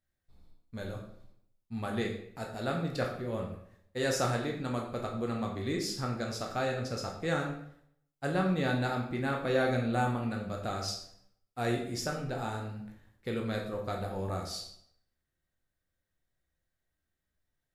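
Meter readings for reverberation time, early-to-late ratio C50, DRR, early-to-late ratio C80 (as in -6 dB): 0.70 s, 6.0 dB, 0.0 dB, 9.0 dB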